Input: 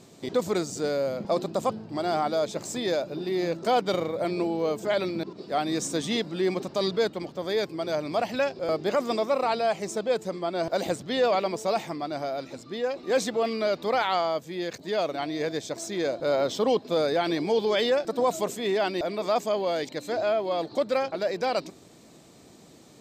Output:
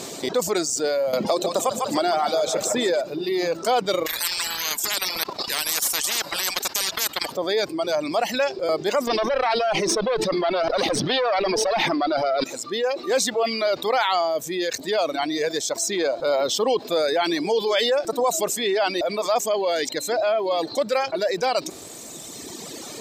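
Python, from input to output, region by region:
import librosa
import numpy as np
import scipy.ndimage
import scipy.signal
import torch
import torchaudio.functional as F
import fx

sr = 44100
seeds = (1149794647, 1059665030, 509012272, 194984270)

y = fx.chain(x, sr, fx.echo_split(split_hz=490.0, low_ms=107, high_ms=150, feedback_pct=52, wet_db=-6.5),
    fx.band_squash(depth_pct=100), at=(1.13, 3.01))
y = fx.chain(y, sr, fx.transient(attack_db=-3, sustain_db=-12),
    fx.peak_eq(hz=12000.0, db=14.5, octaves=0.22),
    fx.spectral_comp(ratio=10.0), at=(4.06, 7.37))
y = fx.chain(y, sr, fx.tube_stage(drive_db=23.0, bias=0.75),
    fx.savgol(points=15),
    fx.env_flatten(amount_pct=100), at=(9.07, 12.44))
y = fx.dereverb_blind(y, sr, rt60_s=1.8)
y = fx.bass_treble(y, sr, bass_db=-12, treble_db=4)
y = fx.env_flatten(y, sr, amount_pct=50)
y = y * 10.0 ** (2.5 / 20.0)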